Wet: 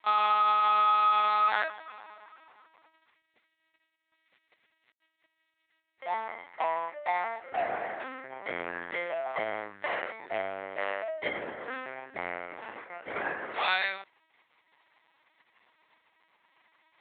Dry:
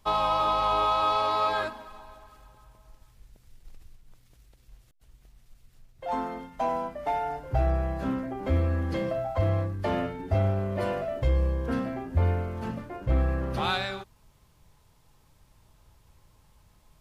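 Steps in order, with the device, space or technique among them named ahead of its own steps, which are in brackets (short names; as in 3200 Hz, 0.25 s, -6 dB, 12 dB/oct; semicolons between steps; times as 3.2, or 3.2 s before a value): talking toy (LPC vocoder at 8 kHz pitch kept; HPF 670 Hz 12 dB/oct; bell 2000 Hz +11 dB 0.5 oct)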